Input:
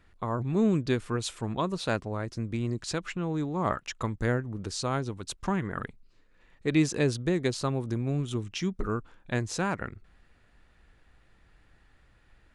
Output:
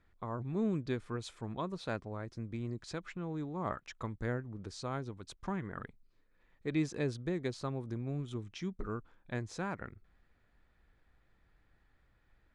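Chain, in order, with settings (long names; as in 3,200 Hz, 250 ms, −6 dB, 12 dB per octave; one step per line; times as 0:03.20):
high-shelf EQ 6,300 Hz −11 dB
notch filter 2,800 Hz, Q 12
level −8.5 dB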